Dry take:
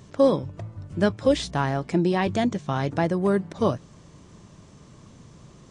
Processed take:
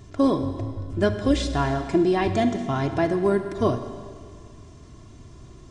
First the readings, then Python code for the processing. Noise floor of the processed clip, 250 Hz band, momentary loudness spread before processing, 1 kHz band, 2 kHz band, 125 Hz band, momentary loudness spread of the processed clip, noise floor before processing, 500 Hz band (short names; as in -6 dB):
-46 dBFS, +2.0 dB, 10 LU, +1.0 dB, 0.0 dB, 0.0 dB, 10 LU, -50 dBFS, 0.0 dB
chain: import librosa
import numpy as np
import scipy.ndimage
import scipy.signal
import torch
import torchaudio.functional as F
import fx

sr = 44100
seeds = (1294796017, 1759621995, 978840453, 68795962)

y = fx.low_shelf(x, sr, hz=170.0, db=9.5)
y = y + 0.64 * np.pad(y, (int(2.9 * sr / 1000.0), 0))[:len(y)]
y = fx.rev_schroeder(y, sr, rt60_s=1.9, comb_ms=33, drr_db=8.0)
y = F.gain(torch.from_numpy(y), -2.0).numpy()